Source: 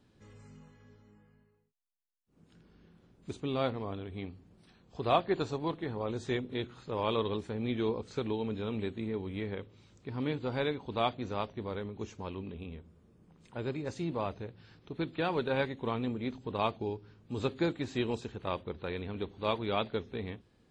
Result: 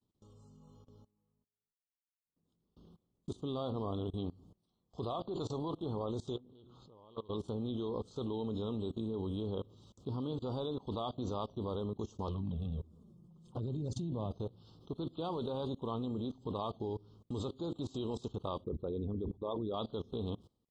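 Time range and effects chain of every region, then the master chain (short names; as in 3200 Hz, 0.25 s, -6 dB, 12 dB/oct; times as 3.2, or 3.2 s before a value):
6.36–7.3 compressor 2.5:1, threshold -48 dBFS + air absorption 100 m + Doppler distortion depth 0.15 ms
12.27–14.31 bell 130 Hz +10.5 dB 1.7 oct + envelope flanger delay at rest 7 ms, full sweep at -26 dBFS + negative-ratio compressor -34 dBFS
18.64–19.74 formant sharpening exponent 2 + sustainer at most 150 dB/s
whole clip: Chebyshev band-stop 1200–3200 Hz, order 3; gate with hold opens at -50 dBFS; level quantiser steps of 22 dB; gain +7 dB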